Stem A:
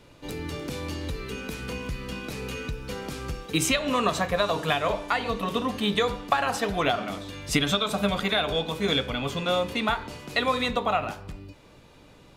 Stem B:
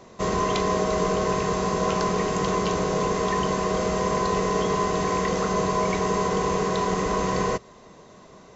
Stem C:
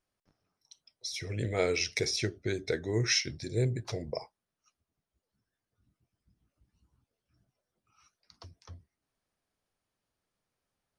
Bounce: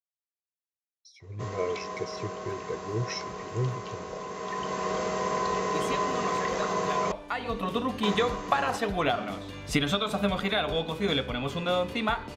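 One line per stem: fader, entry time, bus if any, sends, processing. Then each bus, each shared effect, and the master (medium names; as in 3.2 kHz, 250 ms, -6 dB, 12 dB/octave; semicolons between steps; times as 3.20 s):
5.31 s -23 dB -> 5.90 s -11.5 dB -> 6.99 s -11.5 dB -> 7.59 s -1.5 dB, 2.20 s, no send, none
-1.0 dB, 1.20 s, muted 7.12–8.03 s, no send, high-pass 83 Hz; bass shelf 470 Hz -9 dB; auto duck -9 dB, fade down 0.40 s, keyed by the third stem
-4.0 dB, 0.00 s, no send, spectral contrast expander 1.5:1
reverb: none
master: expander -46 dBFS; treble shelf 4.2 kHz -6.5 dB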